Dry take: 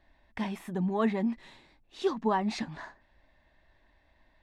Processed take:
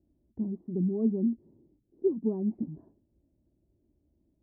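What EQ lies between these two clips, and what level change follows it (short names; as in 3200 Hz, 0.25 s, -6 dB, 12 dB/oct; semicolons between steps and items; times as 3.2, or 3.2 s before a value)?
HPF 82 Hz 12 dB/oct; ladder low-pass 420 Hz, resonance 50%; low shelf 280 Hz +11.5 dB; +1.5 dB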